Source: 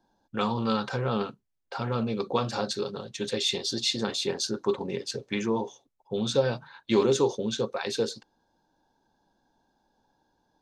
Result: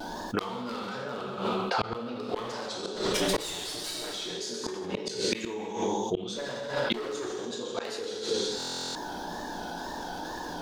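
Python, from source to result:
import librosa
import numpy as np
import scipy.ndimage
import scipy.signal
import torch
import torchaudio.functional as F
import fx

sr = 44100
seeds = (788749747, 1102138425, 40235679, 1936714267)

p1 = fx.lower_of_two(x, sr, delay_ms=6.7, at=(2.95, 4.12))
p2 = 10.0 ** (-18.0 / 20.0) * (np.abs((p1 / 10.0 ** (-18.0 / 20.0) + 3.0) % 4.0 - 2.0) - 1.0)
p3 = p2 + fx.echo_single(p2, sr, ms=125, db=-11.5, dry=0)
p4 = fx.wow_flutter(p3, sr, seeds[0], rate_hz=2.1, depth_cents=140.0)
p5 = fx.low_shelf(p4, sr, hz=230.0, db=-8.0)
p6 = fx.rev_gated(p5, sr, seeds[1], gate_ms=420, shape='falling', drr_db=-1.5)
p7 = fx.gate_flip(p6, sr, shuts_db=-20.0, range_db=-37)
p8 = fx.peak_eq(p7, sr, hz=120.0, db=-5.0, octaves=0.56)
p9 = fx.buffer_glitch(p8, sr, at_s=(8.58,), block=1024, repeats=15)
p10 = fx.env_flatten(p9, sr, amount_pct=70)
y = F.gain(torch.from_numpy(p10), 3.5).numpy()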